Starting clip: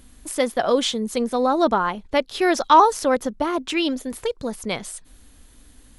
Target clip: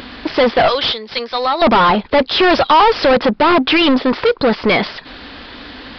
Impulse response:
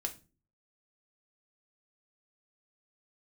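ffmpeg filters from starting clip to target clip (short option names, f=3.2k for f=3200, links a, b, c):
-filter_complex "[0:a]asettb=1/sr,asplit=3[a][b][c];[a]atrim=end=0.684[d];[b]atrim=start=0.68:end=1.62,asetpts=PTS-STARTPTS,afade=t=in:d=0.004:c=qsin,afade=t=out:st=0.936:d=0.004:c=qsin,aderivative[e];[c]atrim=start=1.616[f];[d][e]acrossfade=d=0.004:c1=hsin:c2=qsin[g];[g][f]acrossfade=d=0.004:c1=qsin:c2=hsin,asplit=2[h][i];[i]highpass=f=720:p=1,volume=37dB,asoftclip=type=tanh:threshold=-2.5dB[j];[h][j]amix=inputs=2:normalize=0,lowpass=f=2.8k:p=1,volume=-6dB,aresample=11025,aresample=44100,volume=-1dB"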